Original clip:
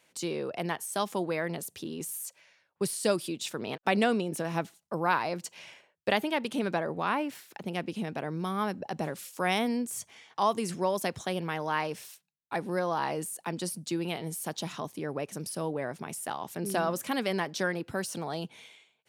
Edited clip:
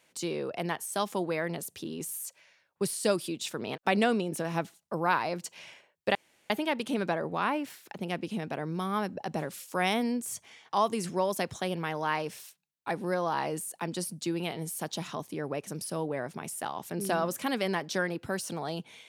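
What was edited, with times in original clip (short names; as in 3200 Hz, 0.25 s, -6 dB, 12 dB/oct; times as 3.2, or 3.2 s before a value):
6.15 insert room tone 0.35 s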